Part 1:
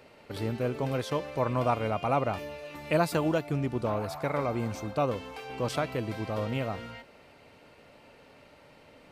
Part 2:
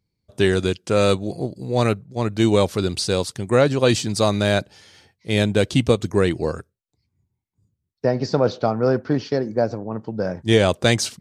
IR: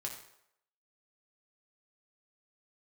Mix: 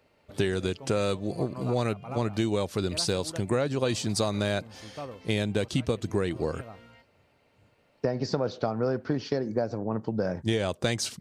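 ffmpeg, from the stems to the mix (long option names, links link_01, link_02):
-filter_complex "[0:a]volume=-11dB[link_01];[1:a]volume=0.5dB[link_02];[link_01][link_02]amix=inputs=2:normalize=0,acompressor=threshold=-24dB:ratio=6"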